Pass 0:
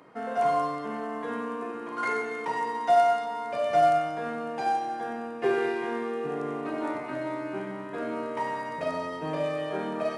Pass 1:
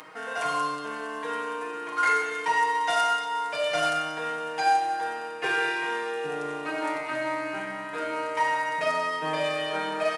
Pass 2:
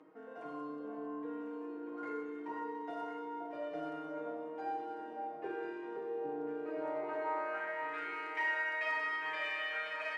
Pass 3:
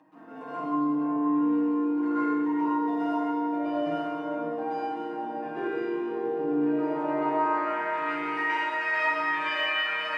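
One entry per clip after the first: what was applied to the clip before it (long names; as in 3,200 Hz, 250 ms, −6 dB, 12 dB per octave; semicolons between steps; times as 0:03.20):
tilt shelving filter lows −9 dB, about 780 Hz; comb filter 6.4 ms, depth 72%; upward compression, threshold −41 dBFS
band-pass filter sweep 310 Hz → 2,000 Hz, 0:06.49–0:07.84; delay that swaps between a low-pass and a high-pass 524 ms, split 1,300 Hz, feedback 66%, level −4.5 dB; level −3 dB
convolution reverb RT60 0.60 s, pre-delay 121 ms, DRR −8 dB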